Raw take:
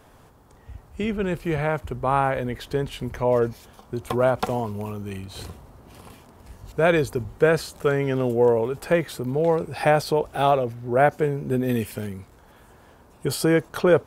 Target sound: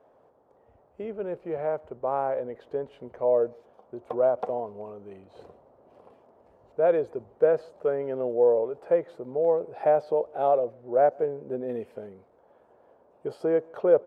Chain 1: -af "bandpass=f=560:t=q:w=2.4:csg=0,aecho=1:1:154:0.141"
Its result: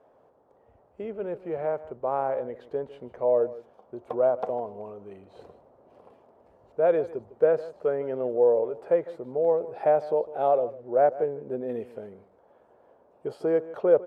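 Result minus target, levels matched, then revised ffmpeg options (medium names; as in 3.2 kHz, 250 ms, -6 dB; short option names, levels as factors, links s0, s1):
echo-to-direct +11 dB
-af "bandpass=f=560:t=q:w=2.4:csg=0,aecho=1:1:154:0.0398"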